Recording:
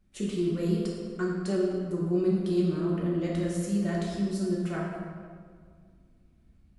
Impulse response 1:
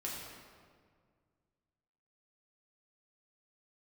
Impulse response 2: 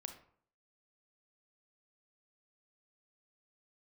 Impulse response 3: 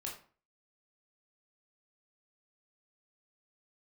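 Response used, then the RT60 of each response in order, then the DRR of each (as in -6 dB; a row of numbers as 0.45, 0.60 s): 1; 1.9, 0.55, 0.40 s; -5.0, 6.0, -3.0 dB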